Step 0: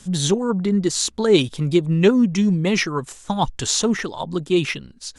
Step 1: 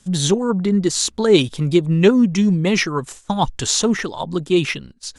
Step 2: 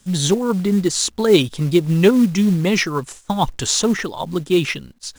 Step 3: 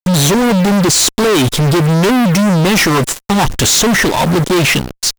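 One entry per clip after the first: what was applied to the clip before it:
noise gate −40 dBFS, range −10 dB; level +2 dB
log-companded quantiser 6 bits
fuzz pedal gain 37 dB, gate −37 dBFS; level +3.5 dB

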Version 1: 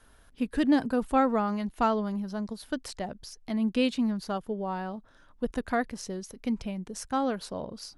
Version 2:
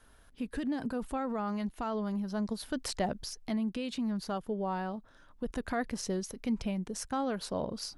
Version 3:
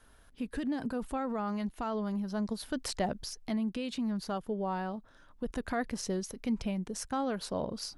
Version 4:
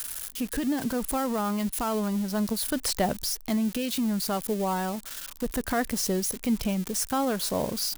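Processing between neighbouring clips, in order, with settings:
brickwall limiter −25 dBFS, peak gain reduction 11 dB; speech leveller 0.5 s
no processing that can be heard
spike at every zero crossing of −31.5 dBFS; level +6 dB

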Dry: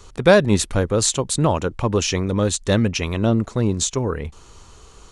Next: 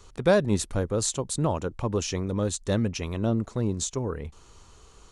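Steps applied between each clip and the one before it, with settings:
dynamic equaliser 2,500 Hz, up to −5 dB, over −38 dBFS, Q 0.73
level −7 dB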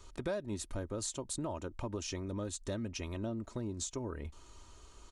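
comb filter 3.2 ms, depth 48%
downward compressor 4 to 1, threshold −31 dBFS, peak gain reduction 14 dB
level −5 dB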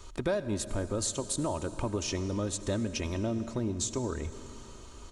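convolution reverb RT60 3.6 s, pre-delay 68 ms, DRR 12 dB
level +6.5 dB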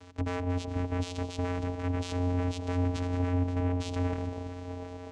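wave folding −31 dBFS
echo through a band-pass that steps 713 ms, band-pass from 390 Hz, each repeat 0.7 octaves, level −6 dB
channel vocoder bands 4, square 89.4 Hz
level +7.5 dB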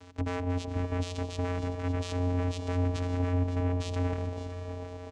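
single-tap delay 561 ms −14 dB

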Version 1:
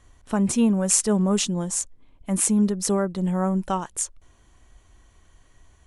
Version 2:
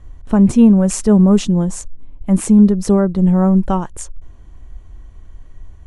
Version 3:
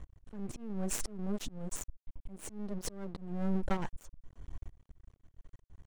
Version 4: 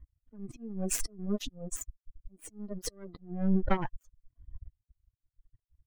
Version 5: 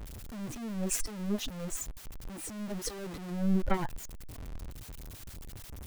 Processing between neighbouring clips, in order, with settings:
spectral tilt −3 dB per octave; level +4.5 dB
half-wave rectification; downward compressor 10 to 1, threshold −22 dBFS, peak gain reduction 15 dB; volume swells 390 ms; level −3 dB
spectral dynamics exaggerated over time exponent 2; level +7.5 dB
converter with a step at zero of −35 dBFS; level −2 dB

